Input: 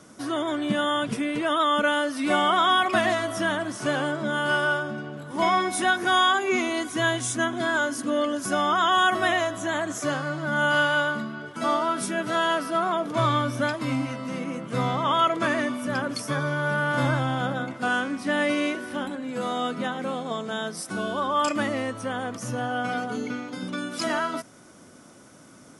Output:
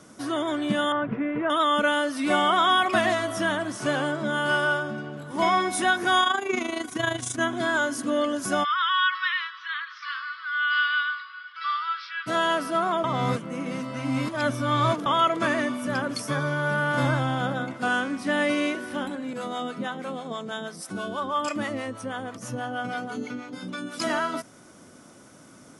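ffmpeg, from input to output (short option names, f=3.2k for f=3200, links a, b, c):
-filter_complex "[0:a]asettb=1/sr,asplit=3[a][b][c];[a]atrim=end=0.924[d];[b]atrim=start=0.92:end=1.5,asetpts=PTS-STARTPTS,afade=t=in:d=0.004:c=qsin,afade=t=out:st=0.576:d=0.004:c=qsin,lowpass=f=2k:w=0.5412,lowpass=f=2k:w=1.3066[e];[c]atrim=start=1.496[f];[d][e]acrossfade=d=0.004:c1=hsin:c2=qsin[g];[g][f]acrossfade=d=0.004:c1=qsin:c2=hsin,asplit=3[h][i][j];[h]afade=t=out:st=6.21:d=0.02[k];[i]tremolo=f=26:d=0.71,afade=t=in:st=6.21:d=0.02,afade=t=out:st=7.39:d=0.02[l];[j]afade=t=in:st=7.39:d=0.02[m];[k][l][m]amix=inputs=3:normalize=0,asplit=3[n][o][p];[n]afade=t=out:st=8.63:d=0.02[q];[o]asuperpass=centerf=2400:order=20:qfactor=0.6,afade=t=in:st=8.63:d=0.02,afade=t=out:st=12.26:d=0.02[r];[p]afade=t=in:st=12.26:d=0.02[s];[q][r][s]amix=inputs=3:normalize=0,asettb=1/sr,asplit=3[t][u][v];[t]atrim=end=19.334[w];[u]atrim=start=19.33:end=24,asetpts=PTS-STARTPTS,afade=t=in:d=0.004:c=qsin,afade=t=out:st=4.666:d=0.004:c=qsin,acrossover=split=540[x][y];[x]aeval=exprs='val(0)*(1-0.7/2+0.7/2*cos(2*PI*6.2*n/s))':c=same[z];[y]aeval=exprs='val(0)*(1-0.7/2-0.7/2*cos(2*PI*6.2*n/s))':c=same[aa];[z][aa]amix=inputs=2:normalize=0[ab];[v]atrim=start=23.996[ac];[w][ab]acrossfade=d=0.004:c1=hsin:c2=qsin[ad];[ad][ac]acrossfade=d=0.004:c1=qsin:c2=hsin,asplit=3[ae][af][ag];[ae]atrim=end=13.042[ah];[af]atrim=start=13.038:end=15.062,asetpts=PTS-STARTPTS,areverse[ai];[ag]atrim=start=15.058[aj];[ah][ai]acrossfade=d=0.004:c1=hsin:c2=hsin[ak];[ak][aj]acrossfade=d=0.004:c1=hsin:c2=hsin"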